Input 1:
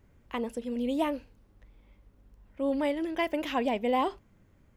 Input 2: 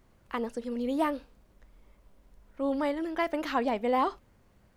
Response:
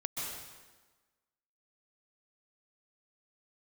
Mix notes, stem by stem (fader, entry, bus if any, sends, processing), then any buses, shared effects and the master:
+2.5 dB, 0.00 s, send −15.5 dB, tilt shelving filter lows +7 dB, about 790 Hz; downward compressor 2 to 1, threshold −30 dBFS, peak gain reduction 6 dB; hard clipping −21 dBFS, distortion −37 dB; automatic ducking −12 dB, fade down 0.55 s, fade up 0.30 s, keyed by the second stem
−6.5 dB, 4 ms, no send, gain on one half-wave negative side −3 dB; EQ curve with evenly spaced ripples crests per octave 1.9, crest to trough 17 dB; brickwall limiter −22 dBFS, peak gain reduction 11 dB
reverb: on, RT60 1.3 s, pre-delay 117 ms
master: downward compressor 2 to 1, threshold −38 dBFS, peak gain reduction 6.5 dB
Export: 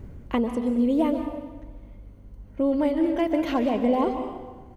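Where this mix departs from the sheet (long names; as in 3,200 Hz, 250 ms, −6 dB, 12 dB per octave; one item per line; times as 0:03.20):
stem 1 +2.5 dB → +14.5 dB
master: missing downward compressor 2 to 1, threshold −38 dBFS, peak gain reduction 6.5 dB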